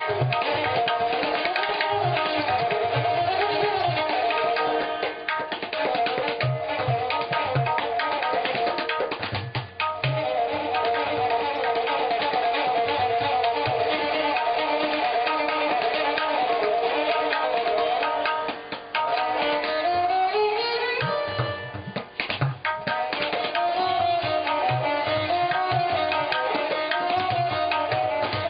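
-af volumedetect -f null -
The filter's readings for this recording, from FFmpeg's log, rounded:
mean_volume: -24.4 dB
max_volume: -9.0 dB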